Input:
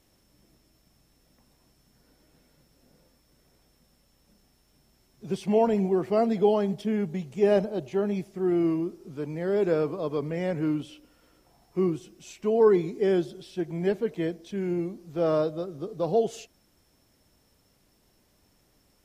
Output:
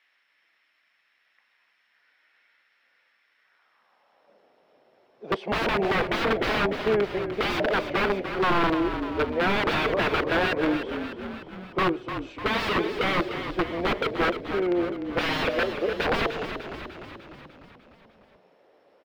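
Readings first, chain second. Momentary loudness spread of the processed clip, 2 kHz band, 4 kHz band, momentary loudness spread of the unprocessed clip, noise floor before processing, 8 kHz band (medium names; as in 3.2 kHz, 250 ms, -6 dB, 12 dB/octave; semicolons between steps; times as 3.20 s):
10 LU, +17.0 dB, +15.0 dB, 12 LU, -66 dBFS, no reading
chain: high-pass sweep 1.9 kHz -> 520 Hz, 3.37–4.40 s; integer overflow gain 23.5 dB; distance through air 380 m; on a send: frequency-shifting echo 299 ms, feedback 60%, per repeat -39 Hz, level -9 dB; on the sum: trim +8 dB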